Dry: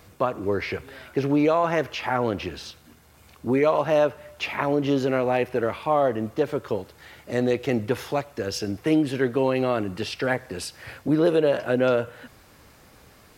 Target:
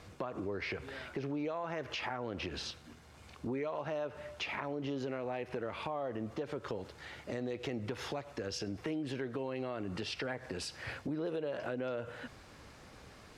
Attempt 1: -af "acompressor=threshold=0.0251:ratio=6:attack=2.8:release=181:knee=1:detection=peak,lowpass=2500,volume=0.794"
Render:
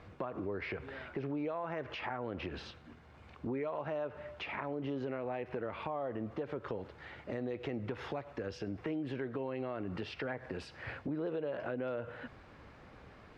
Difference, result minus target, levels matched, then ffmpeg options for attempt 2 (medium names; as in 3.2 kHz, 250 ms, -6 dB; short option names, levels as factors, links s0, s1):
8 kHz band -15.0 dB
-af "acompressor=threshold=0.0251:ratio=6:attack=2.8:release=181:knee=1:detection=peak,lowpass=7200,volume=0.794"